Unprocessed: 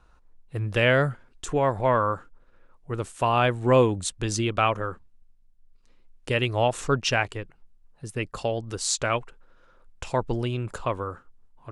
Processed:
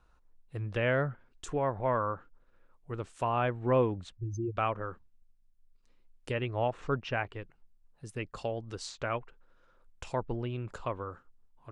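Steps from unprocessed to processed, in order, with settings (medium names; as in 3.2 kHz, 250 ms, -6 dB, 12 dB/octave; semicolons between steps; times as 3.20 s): 4.17–4.57 s: spectral contrast enhancement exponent 3.4; low-pass that closes with the level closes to 2.1 kHz, closed at -22 dBFS; trim -7.5 dB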